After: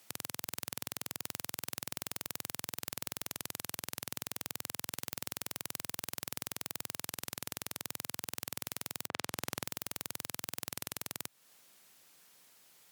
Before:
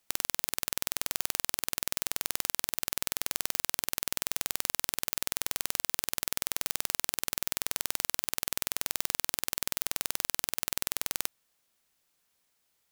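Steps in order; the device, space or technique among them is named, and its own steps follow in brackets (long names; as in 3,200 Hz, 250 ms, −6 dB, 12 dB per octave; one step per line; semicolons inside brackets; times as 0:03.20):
0:09.07–0:09.64: low-pass that shuts in the quiet parts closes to 320 Hz, open at −44 dBFS
podcast mastering chain (high-pass filter 100 Hz 24 dB per octave; de-essing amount 55%; downward compressor 3 to 1, threshold −46 dBFS, peak gain reduction 11 dB; brickwall limiter −22 dBFS, peak gain reduction 4 dB; level +13 dB; MP3 112 kbit/s 48,000 Hz)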